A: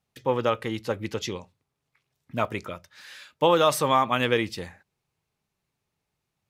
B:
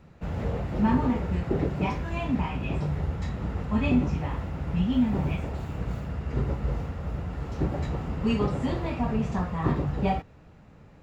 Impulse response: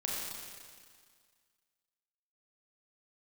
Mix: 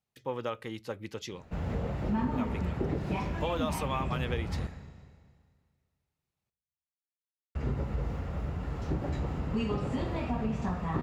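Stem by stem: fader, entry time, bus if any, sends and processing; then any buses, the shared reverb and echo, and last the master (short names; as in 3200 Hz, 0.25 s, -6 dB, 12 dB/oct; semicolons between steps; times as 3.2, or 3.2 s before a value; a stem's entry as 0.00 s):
-9.0 dB, 0.00 s, no send, dry
-3.5 dB, 1.30 s, muted 4.67–7.55, send -10.5 dB, dry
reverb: on, RT60 1.9 s, pre-delay 29 ms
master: compressor 2.5:1, threshold -29 dBFS, peak gain reduction 7.5 dB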